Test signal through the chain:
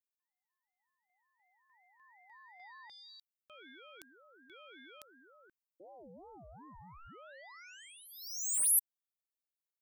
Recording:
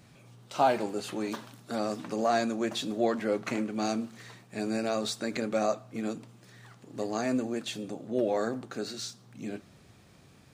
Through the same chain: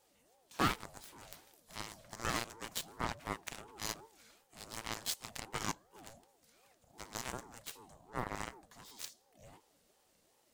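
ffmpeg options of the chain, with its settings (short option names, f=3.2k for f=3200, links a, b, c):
-af "aemphasis=mode=production:type=75kf,aeval=exprs='0.282*(cos(1*acos(clip(val(0)/0.282,-1,1)))-cos(1*PI/2))+0.0112*(cos(5*acos(clip(val(0)/0.282,-1,1)))-cos(5*PI/2))+0.0631*(cos(7*acos(clip(val(0)/0.282,-1,1)))-cos(7*PI/2))':c=same,aeval=exprs='val(0)*sin(2*PI*510*n/s+510*0.35/2.7*sin(2*PI*2.7*n/s))':c=same,volume=-6dB"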